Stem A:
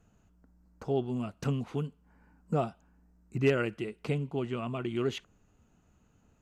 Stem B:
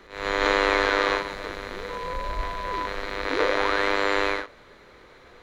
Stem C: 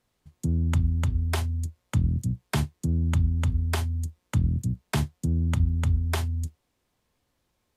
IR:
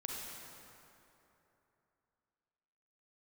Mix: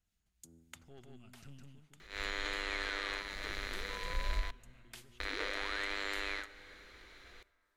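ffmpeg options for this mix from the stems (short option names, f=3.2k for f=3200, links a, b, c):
-filter_complex "[0:a]asubboost=boost=4:cutoff=220,aeval=exprs='(tanh(14.1*val(0)+0.45)-tanh(0.45))/14.1':c=same,volume=-13.5dB,afade=t=out:st=1.56:d=0.26:silence=0.334965,asplit=3[a][b][c];[b]volume=-3dB[d];[1:a]asoftclip=type=tanh:threshold=-9.5dB,adelay=2000,volume=-1dB,asplit=3[e][f][g];[e]atrim=end=4.51,asetpts=PTS-STARTPTS,afade=t=out:st=4.506:d=0.004:c=hsin[h];[f]atrim=start=4.51:end=5.2,asetpts=PTS-STARTPTS,volume=0[i];[g]atrim=start=5.2,asetpts=PTS-STARTPTS,afade=t=in:d=0.004:c=hsin[j];[h][i][j]concat=n=3:v=0:a=1,asplit=2[k][l];[l]volume=-19.5dB[m];[2:a]highpass=440,acrossover=split=1400[n][o];[n]aeval=exprs='val(0)*(1-0.5/2+0.5/2*cos(2*PI*3.7*n/s))':c=same[p];[o]aeval=exprs='val(0)*(1-0.5/2-0.5/2*cos(2*PI*3.7*n/s))':c=same[q];[p][q]amix=inputs=2:normalize=0,volume=-9dB,asplit=2[r][s];[s]volume=-19dB[t];[c]apad=whole_len=342398[u];[r][u]sidechaincompress=threshold=-56dB:ratio=8:attack=16:release=940[v];[3:a]atrim=start_sample=2205[w];[m][t]amix=inputs=2:normalize=0[x];[x][w]afir=irnorm=-1:irlink=0[y];[d]aecho=0:1:160:1[z];[a][k][v][y][z]amix=inputs=5:normalize=0,equalizer=f=125:t=o:w=1:g=-11,equalizer=f=250:t=o:w=1:g=-6,equalizer=f=500:t=o:w=1:g=-10,equalizer=f=1k:t=o:w=1:g=-10,alimiter=limit=-23.5dB:level=0:latency=1:release=397"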